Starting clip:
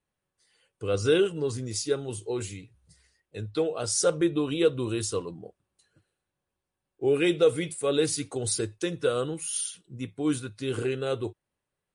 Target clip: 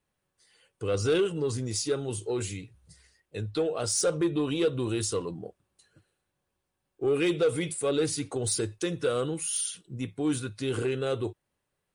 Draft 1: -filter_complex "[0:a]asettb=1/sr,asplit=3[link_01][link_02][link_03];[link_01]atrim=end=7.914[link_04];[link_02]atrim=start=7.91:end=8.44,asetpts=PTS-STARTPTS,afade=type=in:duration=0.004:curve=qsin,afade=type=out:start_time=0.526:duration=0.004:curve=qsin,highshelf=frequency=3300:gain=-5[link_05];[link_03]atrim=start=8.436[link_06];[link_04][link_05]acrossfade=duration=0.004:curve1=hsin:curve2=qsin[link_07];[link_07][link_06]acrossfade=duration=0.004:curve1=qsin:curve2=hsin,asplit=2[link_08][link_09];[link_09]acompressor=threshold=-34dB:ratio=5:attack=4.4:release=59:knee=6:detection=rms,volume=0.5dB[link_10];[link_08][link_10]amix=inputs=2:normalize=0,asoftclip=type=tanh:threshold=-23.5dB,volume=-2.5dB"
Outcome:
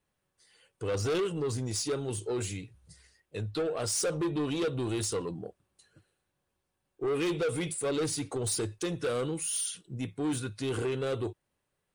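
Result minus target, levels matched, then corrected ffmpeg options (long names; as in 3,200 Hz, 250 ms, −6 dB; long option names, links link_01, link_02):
soft clipping: distortion +9 dB
-filter_complex "[0:a]asettb=1/sr,asplit=3[link_01][link_02][link_03];[link_01]atrim=end=7.914[link_04];[link_02]atrim=start=7.91:end=8.44,asetpts=PTS-STARTPTS,afade=type=in:duration=0.004:curve=qsin,afade=type=out:start_time=0.526:duration=0.004:curve=qsin,highshelf=frequency=3300:gain=-5[link_05];[link_03]atrim=start=8.436[link_06];[link_04][link_05]acrossfade=duration=0.004:curve1=hsin:curve2=qsin[link_07];[link_07][link_06]acrossfade=duration=0.004:curve1=qsin:curve2=hsin,asplit=2[link_08][link_09];[link_09]acompressor=threshold=-34dB:ratio=5:attack=4.4:release=59:knee=6:detection=rms,volume=0.5dB[link_10];[link_08][link_10]amix=inputs=2:normalize=0,asoftclip=type=tanh:threshold=-15dB,volume=-2.5dB"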